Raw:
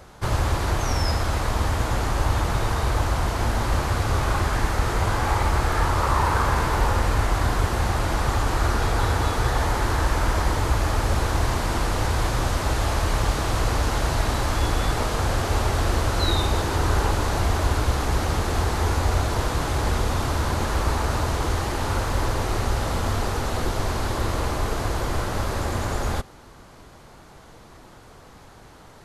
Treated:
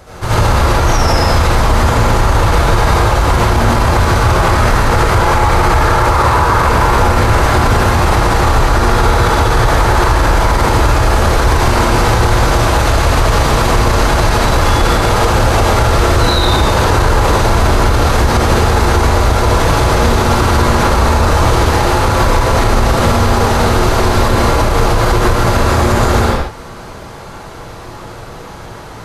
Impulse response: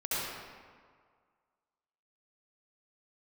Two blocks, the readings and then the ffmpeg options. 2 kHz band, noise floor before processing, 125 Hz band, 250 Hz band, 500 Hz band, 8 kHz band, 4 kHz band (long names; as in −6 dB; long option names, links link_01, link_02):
+13.0 dB, −47 dBFS, +11.5 dB, +13.0 dB, +14.0 dB, +10.5 dB, +12.0 dB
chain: -filter_complex "[1:a]atrim=start_sample=2205,afade=type=out:start_time=0.34:duration=0.01,atrim=end_sample=15435[link_01];[0:a][link_01]afir=irnorm=-1:irlink=0,alimiter=level_in=11.5dB:limit=-1dB:release=50:level=0:latency=1,volume=-1dB"